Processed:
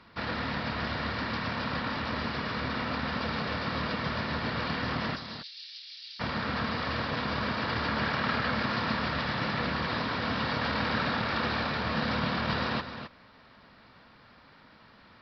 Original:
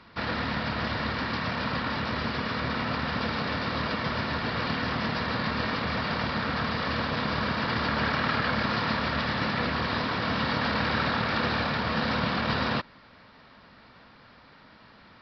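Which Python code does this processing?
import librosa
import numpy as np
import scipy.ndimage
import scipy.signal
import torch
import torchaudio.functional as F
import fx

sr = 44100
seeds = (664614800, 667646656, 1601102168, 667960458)

p1 = fx.cheby2_highpass(x, sr, hz=630.0, order=4, stop_db=80, at=(5.15, 6.19), fade=0.02)
p2 = p1 + fx.echo_single(p1, sr, ms=263, db=-10.0, dry=0)
y = p2 * librosa.db_to_amplitude(-3.0)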